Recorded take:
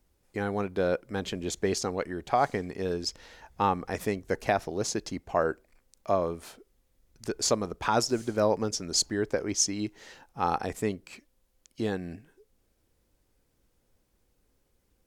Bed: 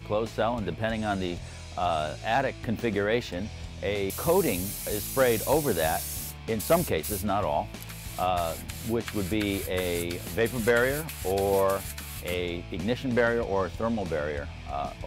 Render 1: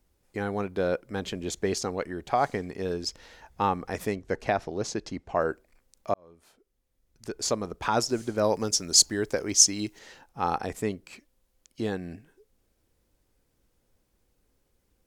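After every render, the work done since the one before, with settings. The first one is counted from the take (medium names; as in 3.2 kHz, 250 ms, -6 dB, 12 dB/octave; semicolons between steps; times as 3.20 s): 4.15–5.40 s: distance through air 58 m; 6.14–7.83 s: fade in; 8.44–9.99 s: treble shelf 3.9 kHz +11 dB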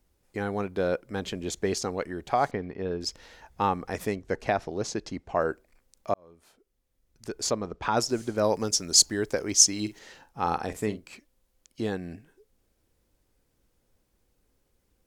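2.51–3.01 s: distance through air 290 m; 7.50–7.97 s: distance through air 97 m; 9.67–11.10 s: doubling 47 ms -12.5 dB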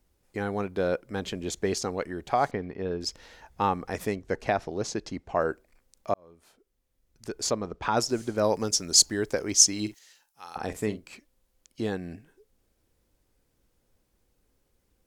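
9.94–10.56 s: pre-emphasis filter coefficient 0.97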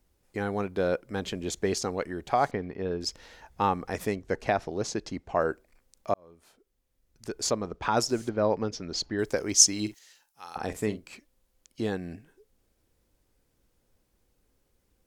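8.29–9.19 s: distance through air 270 m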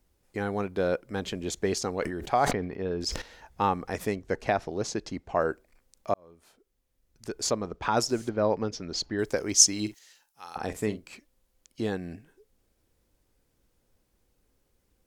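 1.99–3.22 s: decay stretcher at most 60 dB/s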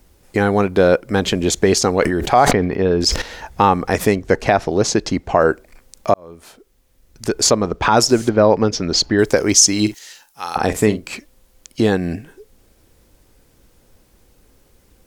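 in parallel at -1.5 dB: compression, threshold -34 dBFS, peak gain reduction 19.5 dB; on the sum: loudness maximiser +12 dB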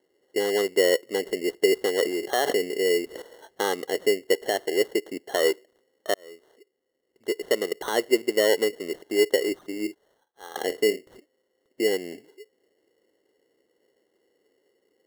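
ladder band-pass 470 Hz, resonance 55%; sample-and-hold 18×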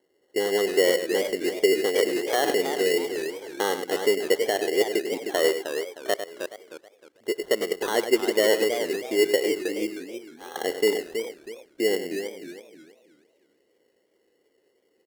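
delay 100 ms -10 dB; modulated delay 316 ms, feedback 32%, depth 202 cents, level -8 dB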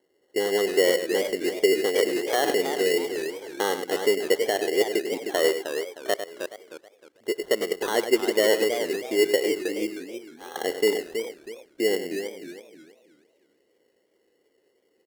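no audible change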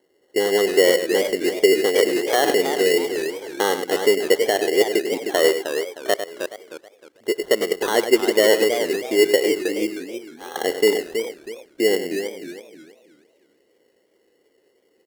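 trim +5 dB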